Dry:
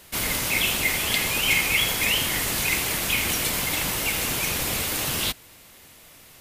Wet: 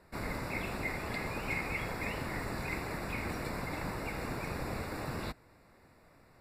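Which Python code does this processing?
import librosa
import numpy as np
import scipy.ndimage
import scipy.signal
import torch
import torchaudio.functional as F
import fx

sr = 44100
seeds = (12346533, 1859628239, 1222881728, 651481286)

y = scipy.signal.lfilter(np.full(14, 1.0 / 14), 1.0, x)
y = y * 10.0 ** (-5.5 / 20.0)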